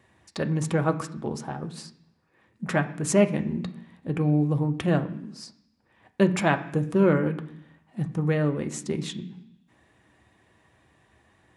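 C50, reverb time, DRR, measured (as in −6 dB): 14.0 dB, 0.70 s, 5.5 dB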